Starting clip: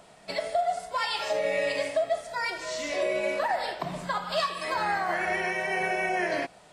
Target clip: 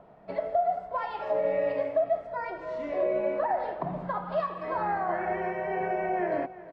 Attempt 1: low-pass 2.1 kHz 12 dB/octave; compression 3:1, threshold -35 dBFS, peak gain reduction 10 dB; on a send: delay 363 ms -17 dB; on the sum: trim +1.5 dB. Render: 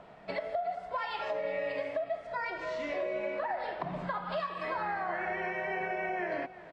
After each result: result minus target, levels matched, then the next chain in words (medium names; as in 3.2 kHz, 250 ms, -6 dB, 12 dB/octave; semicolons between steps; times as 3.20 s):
compression: peak gain reduction +10 dB; 2 kHz band +7.5 dB
low-pass 2.1 kHz 12 dB/octave; on a send: delay 363 ms -17 dB; on the sum: trim +1.5 dB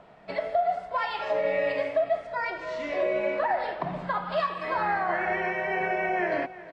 2 kHz band +7.0 dB
low-pass 1 kHz 12 dB/octave; on a send: delay 363 ms -17 dB; on the sum: trim +1.5 dB